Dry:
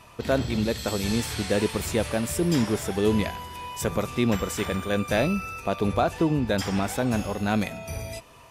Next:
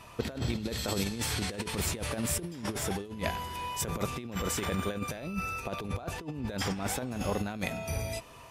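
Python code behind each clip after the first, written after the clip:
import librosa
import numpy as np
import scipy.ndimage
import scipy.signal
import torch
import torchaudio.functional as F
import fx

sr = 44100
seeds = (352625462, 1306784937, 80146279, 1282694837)

y = fx.over_compress(x, sr, threshold_db=-28.0, ratio=-0.5)
y = F.gain(torch.from_numpy(y), -4.0).numpy()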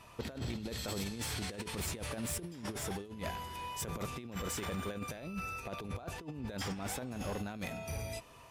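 y = np.clip(x, -10.0 ** (-27.0 / 20.0), 10.0 ** (-27.0 / 20.0))
y = F.gain(torch.from_numpy(y), -5.5).numpy()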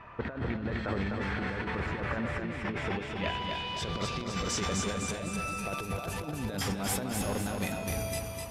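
y = fx.echo_feedback(x, sr, ms=253, feedback_pct=49, wet_db=-4.5)
y = fx.filter_sweep_lowpass(y, sr, from_hz=1700.0, to_hz=12000.0, start_s=2.26, end_s=5.96, q=2.2)
y = F.gain(torch.from_numpy(y), 5.0).numpy()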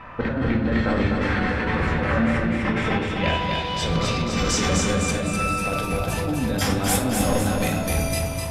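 y = fx.room_shoebox(x, sr, seeds[0], volume_m3=660.0, walls='furnished', distance_m=2.1)
y = F.gain(torch.from_numpy(y), 7.5).numpy()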